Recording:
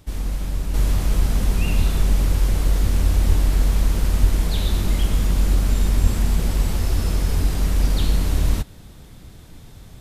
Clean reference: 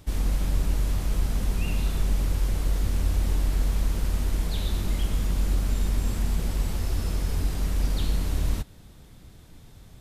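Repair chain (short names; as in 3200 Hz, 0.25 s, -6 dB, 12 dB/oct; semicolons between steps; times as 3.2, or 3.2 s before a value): de-plosive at 1.77/3.28/4.2/6.02; gain correction -6.5 dB, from 0.74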